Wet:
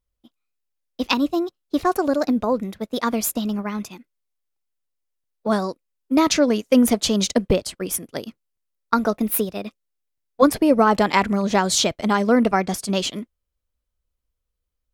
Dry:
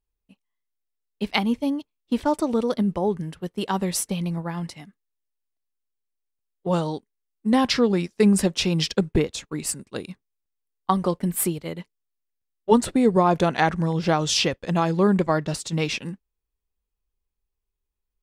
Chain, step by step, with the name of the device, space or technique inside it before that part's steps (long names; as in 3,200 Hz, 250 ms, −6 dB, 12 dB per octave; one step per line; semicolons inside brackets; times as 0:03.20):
nightcore (speed change +22%)
level +2.5 dB